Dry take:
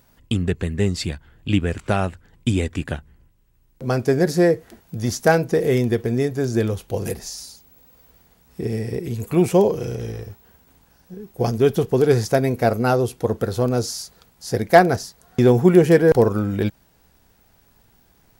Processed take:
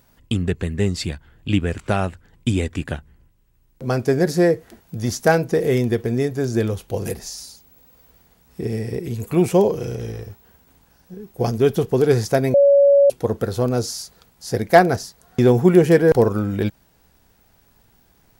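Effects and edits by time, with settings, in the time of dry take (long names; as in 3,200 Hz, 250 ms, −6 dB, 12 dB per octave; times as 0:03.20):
0:12.54–0:13.10: beep over 563 Hz −9 dBFS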